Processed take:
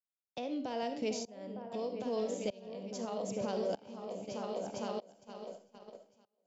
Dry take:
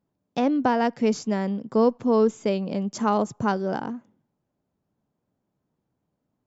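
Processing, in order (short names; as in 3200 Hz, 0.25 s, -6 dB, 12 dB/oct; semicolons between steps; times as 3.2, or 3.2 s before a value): bell 570 Hz +11 dB 0.78 oct; repeats that get brighter 0.454 s, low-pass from 400 Hz, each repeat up 2 oct, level -6 dB; 0.69–3.02 flange 1.1 Hz, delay 9.5 ms, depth 3.6 ms, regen +89%; limiter -16 dBFS, peak gain reduction 12.5 dB; resonant high shelf 2100 Hz +10 dB, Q 1.5; gate -31 dBFS, range -30 dB; reverb RT60 0.35 s, pre-delay 15 ms, DRR 8.5 dB; tremolo saw up 0.8 Hz, depth 95%; three-band squash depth 40%; gain -9 dB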